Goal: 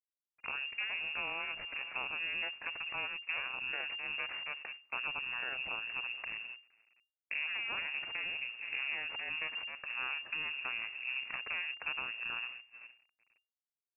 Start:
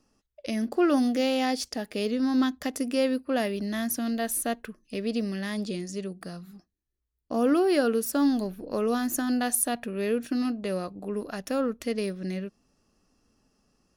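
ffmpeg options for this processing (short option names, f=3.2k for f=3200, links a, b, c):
-filter_complex "[0:a]equalizer=f=400:t=o:w=2.7:g=-10.5,asplit=2[a][b];[b]adelay=466,lowpass=f=940:p=1,volume=-12.5dB,asplit=2[c][d];[d]adelay=466,lowpass=f=940:p=1,volume=0.4,asplit=2[e][f];[f]adelay=466,lowpass=f=940:p=1,volume=0.4,asplit=2[g][h];[h]adelay=466,lowpass=f=940:p=1,volume=0.4[i];[c][e][g][i]amix=inputs=4:normalize=0[j];[a][j]amix=inputs=2:normalize=0,acompressor=threshold=-39dB:ratio=16,aeval=exprs='0.0794*(cos(1*acos(clip(val(0)/0.0794,-1,1)))-cos(1*PI/2))+0.00112*(cos(4*acos(clip(val(0)/0.0794,-1,1)))-cos(4*PI/2))+0.000708*(cos(6*acos(clip(val(0)/0.0794,-1,1)))-cos(6*PI/2))+0.0224*(cos(8*acos(clip(val(0)/0.0794,-1,1)))-cos(8*PI/2))':c=same,asetrate=27781,aresample=44100,atempo=1.5874,acrusher=bits=8:mix=0:aa=0.000001,agate=range=-14dB:threshold=-48dB:ratio=16:detection=peak,lowpass=f=2.4k:t=q:w=0.5098,lowpass=f=2.4k:t=q:w=0.6013,lowpass=f=2.4k:t=q:w=0.9,lowpass=f=2.4k:t=q:w=2.563,afreqshift=-2800"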